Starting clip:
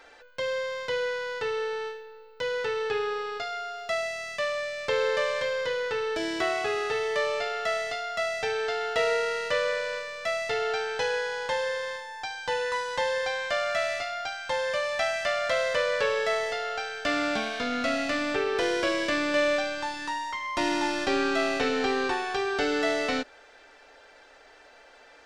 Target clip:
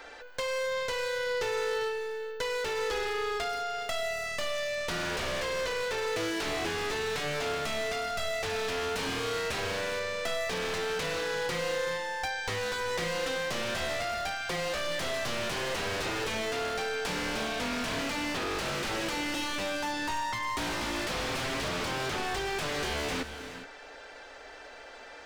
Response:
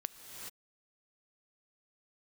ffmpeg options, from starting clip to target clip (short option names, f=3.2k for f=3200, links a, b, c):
-filter_complex "[0:a]aeval=exprs='0.0355*(abs(mod(val(0)/0.0355+3,4)-2)-1)':c=same,acrossover=split=700|4900[a][b][c];[a]acompressor=threshold=-40dB:ratio=4[d];[b]acompressor=threshold=-40dB:ratio=4[e];[c]acompressor=threshold=-51dB:ratio=4[f];[d][e][f]amix=inputs=3:normalize=0,asplit=2[g][h];[1:a]atrim=start_sample=2205,lowshelf=f=180:g=4.5[i];[h][i]afir=irnorm=-1:irlink=0,volume=1dB[j];[g][j]amix=inputs=2:normalize=0"